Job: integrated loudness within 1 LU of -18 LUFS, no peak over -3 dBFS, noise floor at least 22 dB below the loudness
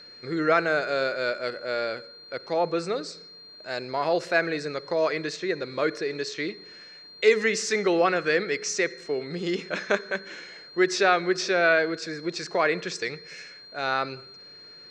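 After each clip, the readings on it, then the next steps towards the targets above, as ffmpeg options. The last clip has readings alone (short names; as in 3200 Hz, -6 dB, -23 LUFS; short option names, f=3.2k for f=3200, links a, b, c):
steady tone 4200 Hz; tone level -45 dBFS; loudness -26.0 LUFS; peak -6.5 dBFS; loudness target -18.0 LUFS
-> -af "bandreject=f=4.2k:w=30"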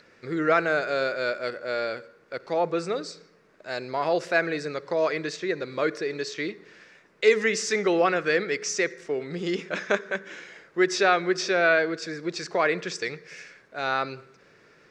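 steady tone none; loudness -26.0 LUFS; peak -6.5 dBFS; loudness target -18.0 LUFS
-> -af "volume=8dB,alimiter=limit=-3dB:level=0:latency=1"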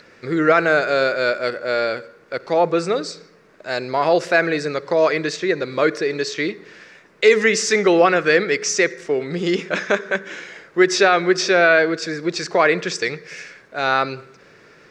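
loudness -18.5 LUFS; peak -3.0 dBFS; noise floor -50 dBFS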